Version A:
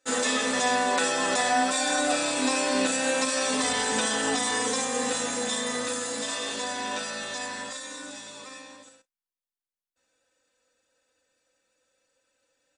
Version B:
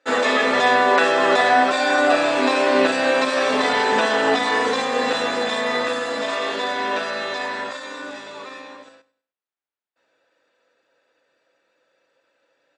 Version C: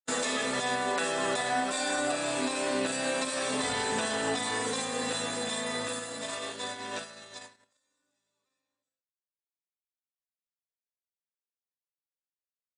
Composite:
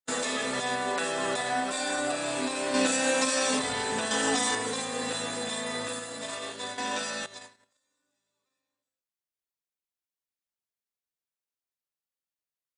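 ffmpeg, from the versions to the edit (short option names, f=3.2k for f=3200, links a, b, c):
-filter_complex "[0:a]asplit=3[a][b][c];[2:a]asplit=4[d][e][f][g];[d]atrim=end=2.742[h];[a]atrim=start=2.738:end=3.592[i];[e]atrim=start=3.588:end=4.112[j];[b]atrim=start=4.108:end=4.552[k];[f]atrim=start=4.548:end=6.782[l];[c]atrim=start=6.778:end=7.262[m];[g]atrim=start=7.258[n];[h][i]acrossfade=d=0.004:c1=hsin:c2=hsin[o];[o][j]acrossfade=d=0.004:c1=hsin:c2=hsin[p];[p][k]acrossfade=d=0.004:c1=hsin:c2=hsin[q];[q][l]acrossfade=d=0.004:c1=hsin:c2=hsin[r];[r][m]acrossfade=d=0.004:c1=hsin:c2=hsin[s];[s][n]acrossfade=d=0.004:c1=hsin:c2=hsin"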